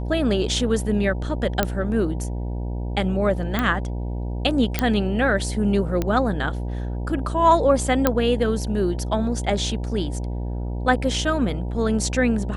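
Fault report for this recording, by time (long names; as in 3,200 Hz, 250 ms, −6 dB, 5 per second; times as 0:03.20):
mains buzz 60 Hz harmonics 16 −27 dBFS
0:01.63: click −5 dBFS
0:03.59: click −9 dBFS
0:04.79: click −5 dBFS
0:06.02: click −10 dBFS
0:08.07: click −3 dBFS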